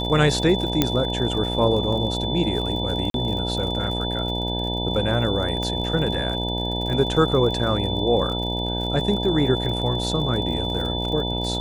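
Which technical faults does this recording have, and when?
buzz 60 Hz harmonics 16 -27 dBFS
crackle 59 per s -30 dBFS
whine 3.5 kHz -28 dBFS
0.82 s: pop -3 dBFS
3.10–3.14 s: dropout 42 ms
5.63 s: pop -16 dBFS

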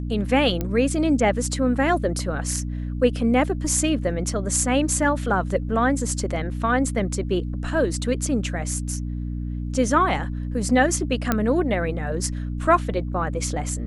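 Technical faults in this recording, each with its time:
hum 60 Hz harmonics 5 -28 dBFS
0.61 s: pop -12 dBFS
11.32 s: pop -6 dBFS

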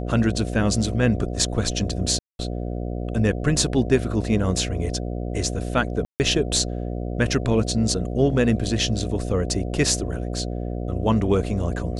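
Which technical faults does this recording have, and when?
buzz 60 Hz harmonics 12 -28 dBFS
2.19–2.39 s: dropout 201 ms
6.05–6.20 s: dropout 149 ms

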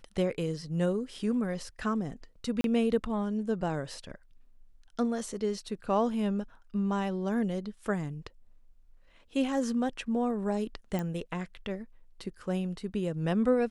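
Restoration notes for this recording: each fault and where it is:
2.61–2.64 s: dropout 32 ms
10.99 s: pop -20 dBFS

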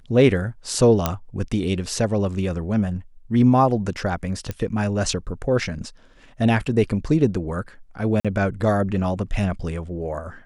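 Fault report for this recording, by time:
1.06 s: pop -5 dBFS
4.51 s: pop -14 dBFS
8.20–8.25 s: dropout 46 ms

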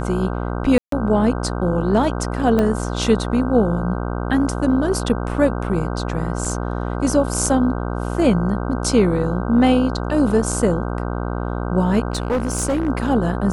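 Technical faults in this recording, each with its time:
buzz 60 Hz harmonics 26 -24 dBFS
0.78–0.92 s: dropout 143 ms
2.59 s: pop -8 dBFS
6.45 s: dropout 3.4 ms
12.10–12.89 s: clipped -15.5 dBFS

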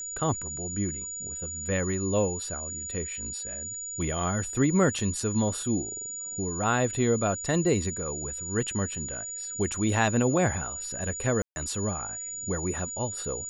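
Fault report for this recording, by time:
whine 6.9 kHz -34 dBFS
11.42–11.56 s: dropout 141 ms

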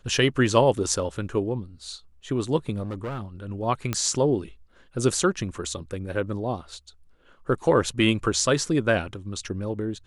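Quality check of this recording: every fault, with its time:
2.82–3.23 s: clipped -27.5 dBFS
3.93 s: pop -11 dBFS

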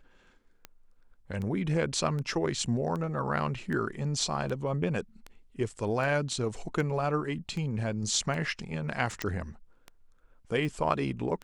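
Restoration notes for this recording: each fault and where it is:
tick 78 rpm -25 dBFS
9.22 s: pop -16 dBFS

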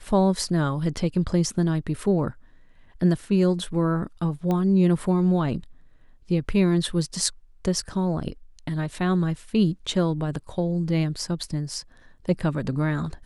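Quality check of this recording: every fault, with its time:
4.51 s: pop -15 dBFS

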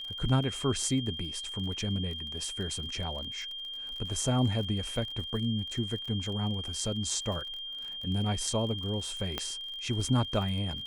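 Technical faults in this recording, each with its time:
crackle 38 per s -38 dBFS
whine 3.2 kHz -37 dBFS
9.38 s: pop -16 dBFS

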